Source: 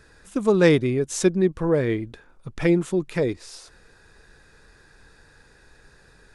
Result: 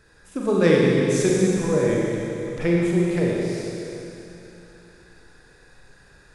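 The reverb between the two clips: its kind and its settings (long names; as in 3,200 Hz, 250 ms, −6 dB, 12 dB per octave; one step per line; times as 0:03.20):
four-comb reverb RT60 3.1 s, combs from 31 ms, DRR −4 dB
level −4 dB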